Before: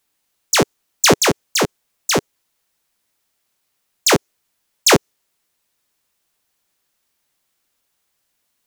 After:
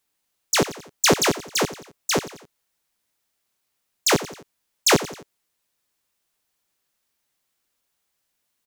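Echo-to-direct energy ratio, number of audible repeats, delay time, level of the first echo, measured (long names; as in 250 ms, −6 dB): −14.0 dB, 3, 88 ms, −15.0 dB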